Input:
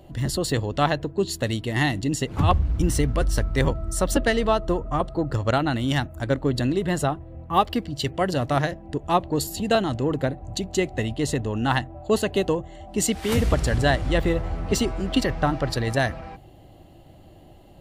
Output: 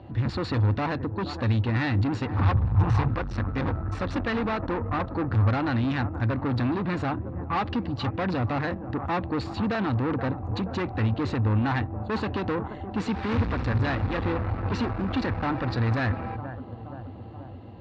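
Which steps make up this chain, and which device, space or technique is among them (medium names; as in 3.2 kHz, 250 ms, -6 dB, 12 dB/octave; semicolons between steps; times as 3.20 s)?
analogue delay pedal into a guitar amplifier (bucket-brigade echo 476 ms, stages 4096, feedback 64%, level -18.5 dB; valve stage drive 29 dB, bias 0.45; cabinet simulation 90–3400 Hz, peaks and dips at 99 Hz +10 dB, 150 Hz -9 dB, 400 Hz -8 dB, 630 Hz -9 dB, 2.1 kHz -4 dB, 3.1 kHz -10 dB); 2.55–3.08 s: graphic EQ 125/250/1000 Hz +11/-8/+8 dB; trim +8.5 dB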